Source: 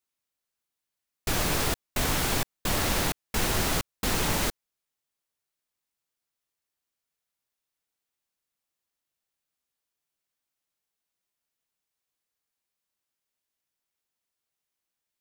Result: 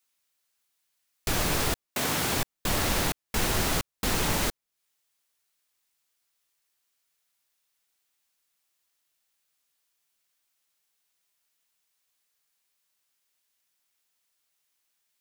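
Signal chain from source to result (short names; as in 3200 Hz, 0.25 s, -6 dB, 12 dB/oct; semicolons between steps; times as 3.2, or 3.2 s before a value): 1.88–2.36 HPF 230 Hz -> 71 Hz 12 dB/oct; mismatched tape noise reduction encoder only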